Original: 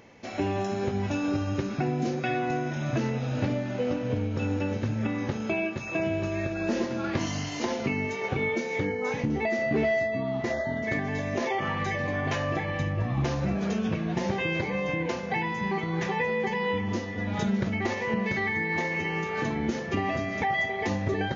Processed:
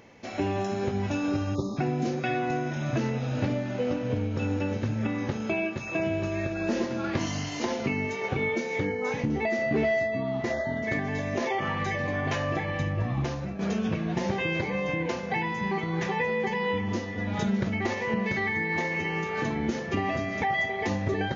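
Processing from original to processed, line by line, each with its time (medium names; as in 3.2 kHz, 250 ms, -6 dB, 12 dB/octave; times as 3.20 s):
1.55–1.77 s: spectral selection erased 1.3–3.4 kHz
13.08–13.59 s: fade out, to -10 dB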